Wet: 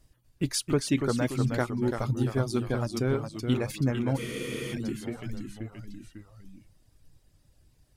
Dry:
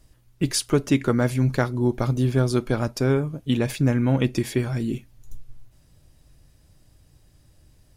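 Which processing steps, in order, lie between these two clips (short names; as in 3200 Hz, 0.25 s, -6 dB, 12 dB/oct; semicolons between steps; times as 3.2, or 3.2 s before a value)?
reverb removal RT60 1.1 s; echoes that change speed 0.244 s, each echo -1 st, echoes 3, each echo -6 dB; spectral freeze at 4.2, 0.52 s; gain -5.5 dB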